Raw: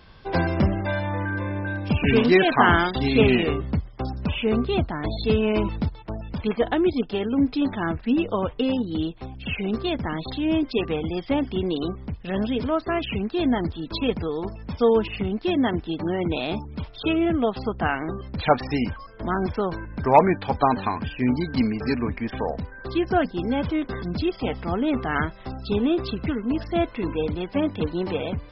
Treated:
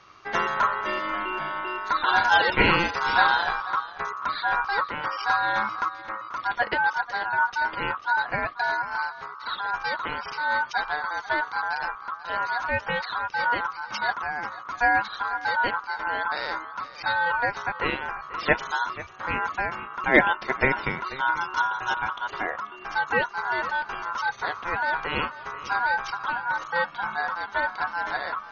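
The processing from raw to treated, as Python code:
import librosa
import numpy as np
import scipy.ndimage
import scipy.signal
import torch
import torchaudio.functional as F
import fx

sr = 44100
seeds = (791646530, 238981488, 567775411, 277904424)

p1 = x * np.sin(2.0 * np.pi * 1200.0 * np.arange(len(x)) / sr)
y = p1 + fx.echo_single(p1, sr, ms=488, db=-16.5, dry=0)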